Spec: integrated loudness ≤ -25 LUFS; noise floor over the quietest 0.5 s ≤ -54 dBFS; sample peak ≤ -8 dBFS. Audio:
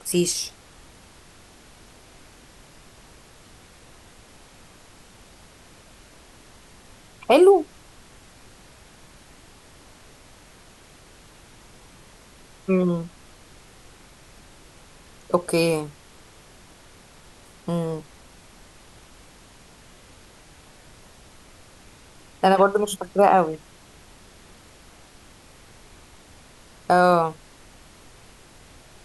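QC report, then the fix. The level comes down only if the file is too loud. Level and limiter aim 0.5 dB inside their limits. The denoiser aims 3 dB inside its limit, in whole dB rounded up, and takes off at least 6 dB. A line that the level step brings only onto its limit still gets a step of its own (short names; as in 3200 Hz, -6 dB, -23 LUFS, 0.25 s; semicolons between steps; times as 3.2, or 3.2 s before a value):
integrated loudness -21.0 LUFS: fail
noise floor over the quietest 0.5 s -50 dBFS: fail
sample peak -3.0 dBFS: fail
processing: gain -4.5 dB; limiter -8.5 dBFS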